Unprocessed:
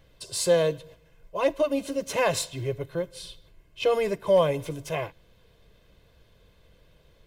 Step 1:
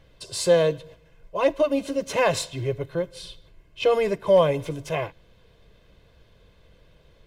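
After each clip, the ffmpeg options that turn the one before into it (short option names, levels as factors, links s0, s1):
-af "highshelf=f=9000:g=-10,volume=1.41"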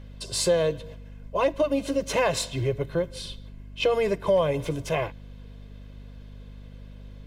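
-af "acompressor=threshold=0.0631:ratio=2.5,aeval=exprs='val(0)+0.00631*(sin(2*PI*50*n/s)+sin(2*PI*2*50*n/s)/2+sin(2*PI*3*50*n/s)/3+sin(2*PI*4*50*n/s)/4+sin(2*PI*5*50*n/s)/5)':c=same,volume=1.33"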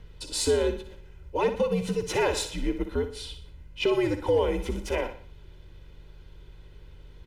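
-filter_complex "[0:a]afreqshift=-91,asplit=2[s0][s1];[s1]aecho=0:1:60|120|180|240:0.316|0.133|0.0558|0.0234[s2];[s0][s2]amix=inputs=2:normalize=0,volume=0.794"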